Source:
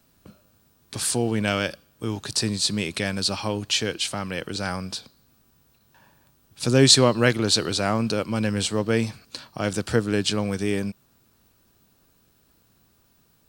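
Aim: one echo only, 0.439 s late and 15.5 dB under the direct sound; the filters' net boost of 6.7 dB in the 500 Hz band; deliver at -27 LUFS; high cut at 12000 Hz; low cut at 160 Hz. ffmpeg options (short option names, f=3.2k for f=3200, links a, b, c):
-af "highpass=160,lowpass=12k,equalizer=f=500:t=o:g=8,aecho=1:1:439:0.168,volume=-6dB"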